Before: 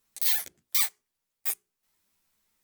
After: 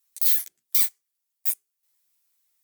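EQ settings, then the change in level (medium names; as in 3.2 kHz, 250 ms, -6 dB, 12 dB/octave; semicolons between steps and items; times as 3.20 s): tilt EQ +3.5 dB/octave; -9.0 dB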